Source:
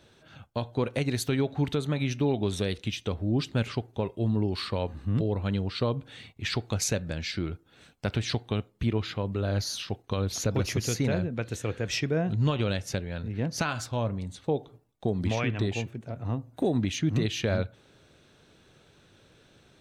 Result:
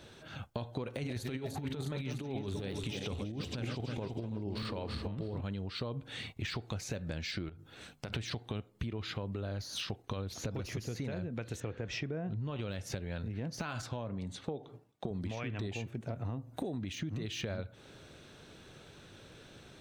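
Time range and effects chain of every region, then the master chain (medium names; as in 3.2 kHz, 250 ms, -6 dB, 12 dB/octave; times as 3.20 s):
0.88–5.41 s: backward echo that repeats 163 ms, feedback 65%, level -9 dB + compressor with a negative ratio -29 dBFS, ratio -0.5
7.49–8.13 s: hum notches 50/100/150/200/250 Hz + compression, threshold -43 dBFS
11.60–12.56 s: low-pass 7.4 kHz 24 dB/octave + treble shelf 3.4 kHz -12 dB
13.82–15.11 s: high-pass 110 Hz + treble shelf 7.2 kHz -9.5 dB
whole clip: de-esser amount 95%; peak limiter -22 dBFS; compression 12:1, threshold -39 dBFS; trim +4.5 dB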